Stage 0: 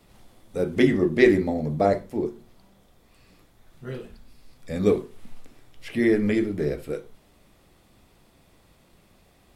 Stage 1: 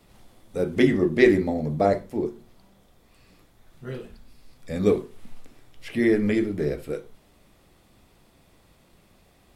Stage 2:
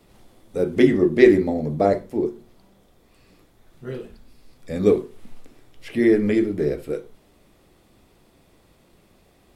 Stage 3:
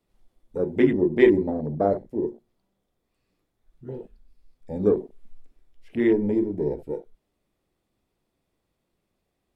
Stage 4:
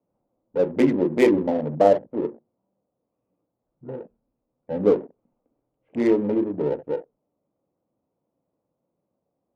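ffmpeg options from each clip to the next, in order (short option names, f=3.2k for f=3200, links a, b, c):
-af anull
-af "equalizer=f=370:t=o:w=1.2:g=4.5"
-af "afwtdn=0.0355,volume=-3.5dB"
-af "highpass=180,equalizer=f=210:t=q:w=4:g=-4,equalizer=f=380:t=q:w=4:g=-8,equalizer=f=540:t=q:w=4:g=5,equalizer=f=930:t=q:w=4:g=3,equalizer=f=1.8k:t=q:w=4:g=-10,lowpass=f=3.1k:w=0.5412,lowpass=f=3.1k:w=1.3066,adynamicsmooth=sensitivity=5.5:basefreq=780,volume=5dB"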